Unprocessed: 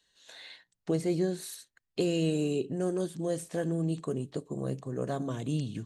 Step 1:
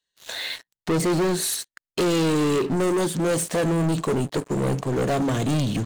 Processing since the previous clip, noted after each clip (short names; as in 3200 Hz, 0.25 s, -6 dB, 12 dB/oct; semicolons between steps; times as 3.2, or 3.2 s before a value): low shelf 210 Hz -4 dB; sample leveller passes 5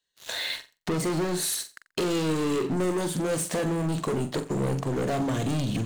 compressor, threshold -26 dBFS, peak gain reduction 6 dB; on a send: flutter echo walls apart 7.6 m, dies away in 0.27 s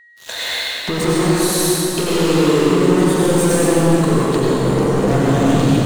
reverb RT60 3.7 s, pre-delay 81 ms, DRR -6.5 dB; whine 1900 Hz -50 dBFS; gain +5 dB